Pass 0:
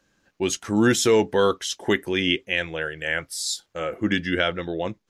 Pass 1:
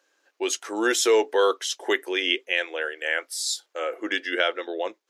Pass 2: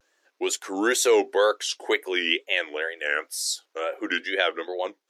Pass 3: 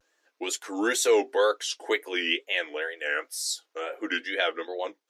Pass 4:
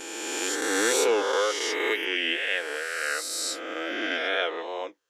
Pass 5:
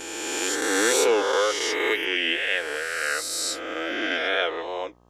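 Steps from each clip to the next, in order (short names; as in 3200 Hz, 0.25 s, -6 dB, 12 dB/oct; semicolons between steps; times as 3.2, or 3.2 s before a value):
inverse Chebyshev high-pass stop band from 180 Hz, stop band 40 dB
wow and flutter 150 cents
notch comb 190 Hz; gain -1.5 dB
spectral swells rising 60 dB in 2.35 s; gain -4.5 dB
buzz 60 Hz, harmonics 21, -61 dBFS -3 dB/oct; gain +2.5 dB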